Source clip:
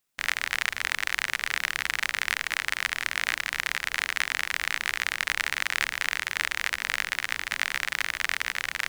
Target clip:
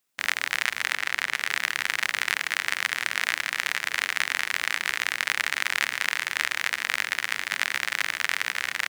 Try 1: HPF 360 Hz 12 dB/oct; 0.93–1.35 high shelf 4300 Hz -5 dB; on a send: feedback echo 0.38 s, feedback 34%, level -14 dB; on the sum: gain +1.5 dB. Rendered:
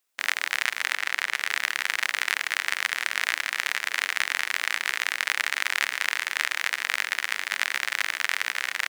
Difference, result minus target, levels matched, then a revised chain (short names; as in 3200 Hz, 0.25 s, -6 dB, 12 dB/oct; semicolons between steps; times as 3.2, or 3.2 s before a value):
125 Hz band -13.0 dB
HPF 140 Hz 12 dB/oct; 0.93–1.35 high shelf 4300 Hz -5 dB; on a send: feedback echo 0.38 s, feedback 34%, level -14 dB; on the sum: gain +1.5 dB